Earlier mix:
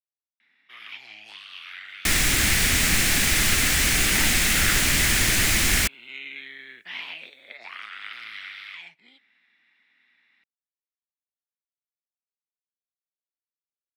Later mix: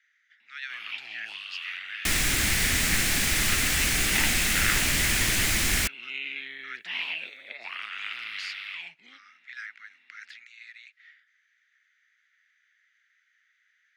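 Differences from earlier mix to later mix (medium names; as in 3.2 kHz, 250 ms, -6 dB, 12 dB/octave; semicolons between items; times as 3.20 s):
speech: unmuted; first sound: add peaking EQ 2.7 kHz +8 dB 0.24 oct; second sound -4.0 dB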